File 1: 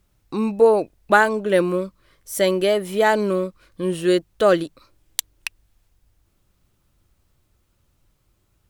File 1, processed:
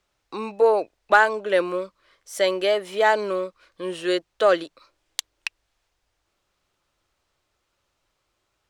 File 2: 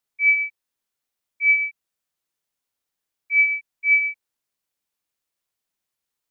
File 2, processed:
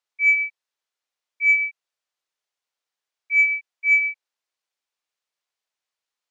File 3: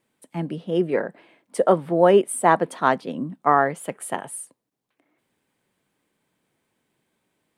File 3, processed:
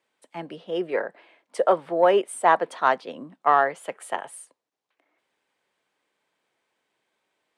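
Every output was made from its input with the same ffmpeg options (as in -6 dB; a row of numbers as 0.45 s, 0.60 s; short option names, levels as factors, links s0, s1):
-filter_complex "[0:a]acrossover=split=410 7400:gain=0.141 1 0.178[s0][s1][s2];[s0][s1][s2]amix=inputs=3:normalize=0,aeval=exprs='0.891*(cos(1*acos(clip(val(0)/0.891,-1,1)))-cos(1*PI/2))+0.0316*(cos(5*acos(clip(val(0)/0.891,-1,1)))-cos(5*PI/2))':c=same,volume=0.891"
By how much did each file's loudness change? -2.0 LU, 0.0 LU, -2.0 LU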